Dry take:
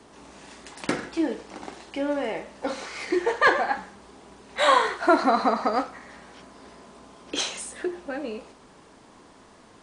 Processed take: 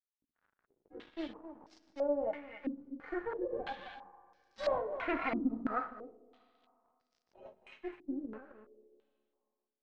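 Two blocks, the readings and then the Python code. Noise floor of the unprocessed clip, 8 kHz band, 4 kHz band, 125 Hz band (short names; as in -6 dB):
-52 dBFS, under -30 dB, -22.5 dB, n/a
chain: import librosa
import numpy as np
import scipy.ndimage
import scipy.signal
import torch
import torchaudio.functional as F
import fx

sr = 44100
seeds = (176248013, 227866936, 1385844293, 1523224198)

p1 = fx.hpss_only(x, sr, part='harmonic')
p2 = fx.peak_eq(p1, sr, hz=130.0, db=-12.0, octaves=0.49)
p3 = fx.harmonic_tremolo(p2, sr, hz=3.7, depth_pct=70, crossover_hz=440.0)
p4 = fx.comb_fb(p3, sr, f0_hz=86.0, decay_s=0.82, harmonics='all', damping=0.0, mix_pct=30)
p5 = fx.tube_stage(p4, sr, drive_db=28.0, bias=0.65)
p6 = np.sign(p5) * np.maximum(np.abs(p5) - 10.0 ** (-52.5 / 20.0), 0.0)
p7 = p6 + fx.echo_single(p6, sr, ms=264, db=-11.0, dry=0)
p8 = fx.rev_schroeder(p7, sr, rt60_s=2.4, comb_ms=28, drr_db=16.5)
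p9 = fx.filter_held_lowpass(p8, sr, hz=3.0, low_hz=280.0, high_hz=5300.0)
y = p9 * librosa.db_to_amplitude(-2.0)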